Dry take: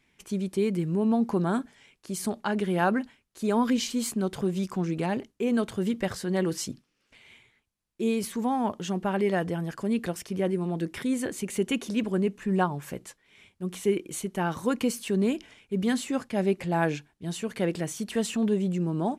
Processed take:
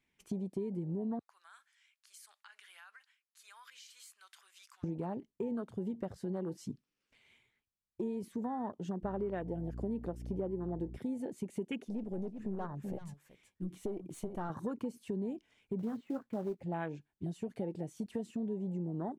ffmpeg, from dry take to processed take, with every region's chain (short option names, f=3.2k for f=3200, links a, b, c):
-filter_complex "[0:a]asettb=1/sr,asplit=3[a][b][c];[a]atrim=end=1.194[d];[b]atrim=start=1.19:end=4.84,asetpts=PTS-STARTPTS,afade=t=in:d=0.004:c=qsin,afade=t=out:st=3.646:d=0.004:c=qsin,highpass=f=1.3k:w=0.5412,highpass=f=1.3k:w=1.3066,acompressor=threshold=-39dB:ratio=5:attack=3.2:release=140:knee=1:detection=peak[e];[c]atrim=start=4.836[f];[d][e]acrossfade=d=0.004:c1=hsin:c2=qsin[g];[g][f]acrossfade=d=0.004:c1=qsin:c2=hsin,asettb=1/sr,asplit=3[h][i][j];[h]atrim=end=9.034[k];[i]atrim=start=9.03:end=10.97,asetpts=PTS-STARTPTS,afade=t=in:d=0.004:c=qsin,afade=t=out:st=1.936:d=0.004:c=qsin,equalizer=f=420:t=o:w=2.1:g=5.5,aeval=exprs='val(0)+0.0178*(sin(2*PI*60*n/s)+sin(2*PI*2*60*n/s)/2+sin(2*PI*3*60*n/s)/3+sin(2*PI*4*60*n/s)/4+sin(2*PI*5*60*n/s)/5)':c=same[l];[j]atrim=start=10.966[m];[k][l]acrossfade=d=0.004:c1=hsin:c2=qsin[n];[n][m]acrossfade=d=0.004:c1=qsin:c2=hsin,asettb=1/sr,asplit=3[o][p][q];[o]atrim=end=11.844[r];[p]atrim=start=11.84:end=14.5,asetpts=PTS-STARTPTS,afade=t=in:d=0.004:c=qsin,afade=t=out:st=2.656:d=0.004:c=qsin,aeval=exprs='(tanh(17.8*val(0)+0.55)-tanh(0.55))/17.8':c=same,aecho=1:1:378:0.335,atrim=end_sample=117306[s];[q]atrim=start=14.496[t];[r][s]acrossfade=d=0.004:c1=hsin:c2=qsin[u];[u][t]acrossfade=d=0.004:c1=qsin:c2=hsin,asettb=1/sr,asplit=3[v][w][x];[v]atrim=end=15.794[y];[w]atrim=start=15.79:end=16.62,asetpts=PTS-STARTPTS,afade=t=in:d=0.004:c=qsin,afade=t=out:st=0.826:d=0.004:c=qsin,lowpass=2.4k,acrusher=bits=3:mode=log:mix=0:aa=0.000001,asplit=2[z][aa];[aa]adelay=18,volume=-11.5dB[ab];[z][ab]amix=inputs=2:normalize=0,atrim=end_sample=36603[ac];[x]atrim=start=16.616[ad];[y][ac]acrossfade=d=0.004:c1=hsin:c2=qsin[ae];[ae][ad]acrossfade=d=0.004:c1=qsin:c2=hsin,afwtdn=0.0251,acompressor=threshold=-40dB:ratio=5,volume=3.5dB"